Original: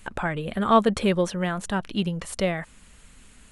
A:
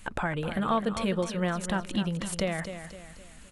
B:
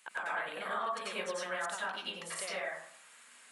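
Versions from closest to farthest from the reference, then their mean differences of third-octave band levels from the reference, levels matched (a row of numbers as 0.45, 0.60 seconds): A, B; 5.5, 11.5 decibels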